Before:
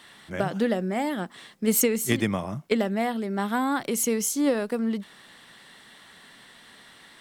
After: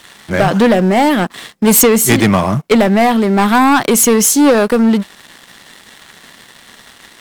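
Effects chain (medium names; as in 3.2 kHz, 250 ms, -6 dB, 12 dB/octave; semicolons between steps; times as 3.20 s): dynamic bell 1.1 kHz, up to +4 dB, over -40 dBFS, Q 1.4; waveshaping leveller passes 3; trim +6.5 dB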